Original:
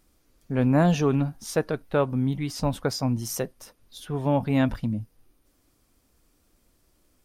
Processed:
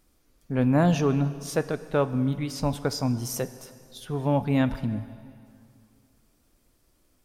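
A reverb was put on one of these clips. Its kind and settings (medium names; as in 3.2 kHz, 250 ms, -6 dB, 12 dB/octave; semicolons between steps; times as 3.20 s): plate-style reverb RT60 2.4 s, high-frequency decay 0.9×, DRR 13 dB; trim -1 dB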